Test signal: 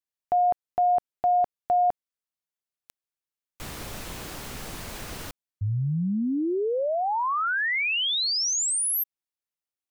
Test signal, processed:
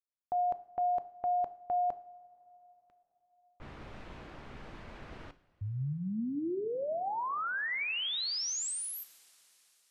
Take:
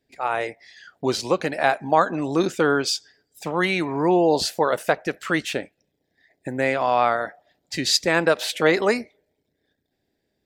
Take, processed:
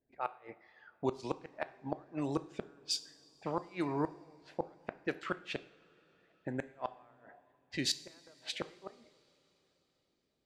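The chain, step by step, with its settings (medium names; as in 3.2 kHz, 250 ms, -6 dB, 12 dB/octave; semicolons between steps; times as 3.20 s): inverted gate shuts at -11 dBFS, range -35 dB; level-controlled noise filter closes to 1.2 kHz, open at -21.5 dBFS; two-slope reverb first 0.57 s, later 4.5 s, from -18 dB, DRR 12 dB; trim -9 dB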